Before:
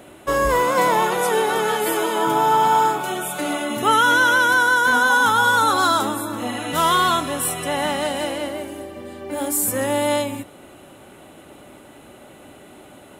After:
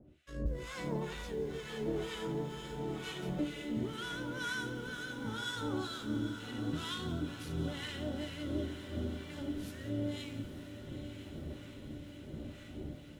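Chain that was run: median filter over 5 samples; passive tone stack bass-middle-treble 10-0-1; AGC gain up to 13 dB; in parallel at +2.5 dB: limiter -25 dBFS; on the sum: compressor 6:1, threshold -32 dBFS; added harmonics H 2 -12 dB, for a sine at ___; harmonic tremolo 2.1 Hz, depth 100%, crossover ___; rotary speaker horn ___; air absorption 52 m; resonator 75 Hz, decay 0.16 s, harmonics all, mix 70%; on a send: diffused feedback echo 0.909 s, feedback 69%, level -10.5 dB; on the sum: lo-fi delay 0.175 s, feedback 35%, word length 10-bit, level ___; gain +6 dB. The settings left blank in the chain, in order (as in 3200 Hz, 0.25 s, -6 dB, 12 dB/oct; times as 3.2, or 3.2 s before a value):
-22.5 dBFS, 1000 Hz, 0.85 Hz, -14.5 dB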